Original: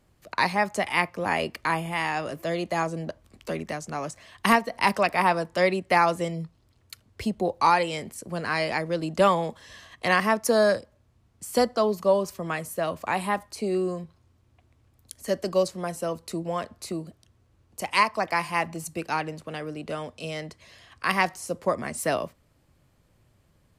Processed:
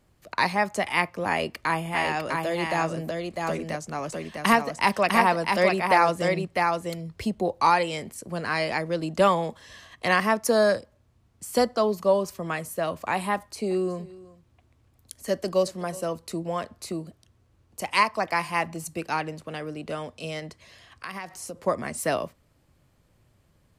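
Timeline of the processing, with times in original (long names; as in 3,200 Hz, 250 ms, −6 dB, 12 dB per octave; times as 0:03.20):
0:01.29–0:07.23: single-tap delay 652 ms −3.5 dB
0:13.34–0:16.08: single-tap delay 370 ms −20 dB
0:20.39–0:21.62: downward compressor, threshold −32 dBFS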